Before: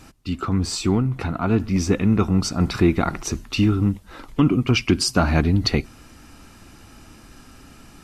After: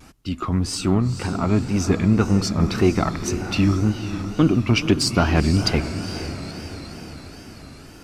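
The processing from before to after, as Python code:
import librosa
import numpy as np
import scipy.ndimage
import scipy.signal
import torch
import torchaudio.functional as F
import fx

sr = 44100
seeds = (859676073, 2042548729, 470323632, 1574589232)

y = fx.cheby_harmonics(x, sr, harmonics=(4, 7), levels_db=(-24, -42), full_scale_db=-5.0)
y = fx.echo_diffused(y, sr, ms=477, feedback_pct=59, wet_db=-10)
y = fx.wow_flutter(y, sr, seeds[0], rate_hz=2.1, depth_cents=120.0)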